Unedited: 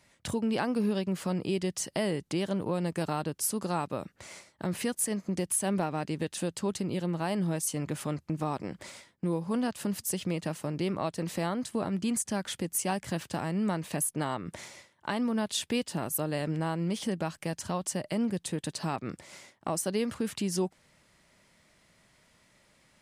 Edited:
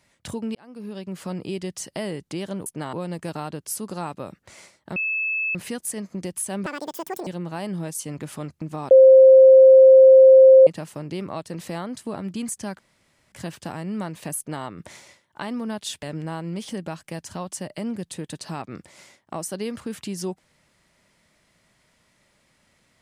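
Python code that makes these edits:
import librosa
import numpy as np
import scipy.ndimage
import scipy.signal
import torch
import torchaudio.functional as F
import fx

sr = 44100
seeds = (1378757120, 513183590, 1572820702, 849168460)

y = fx.edit(x, sr, fx.fade_in_span(start_s=0.55, length_s=0.73),
    fx.insert_tone(at_s=4.69, length_s=0.59, hz=2610.0, db=-22.0),
    fx.speed_span(start_s=5.8, length_s=1.15, speed=1.89),
    fx.bleep(start_s=8.59, length_s=1.76, hz=527.0, db=-6.5),
    fx.room_tone_fill(start_s=12.47, length_s=0.53),
    fx.duplicate(start_s=14.06, length_s=0.27, to_s=2.66),
    fx.cut(start_s=15.71, length_s=0.66), tone=tone)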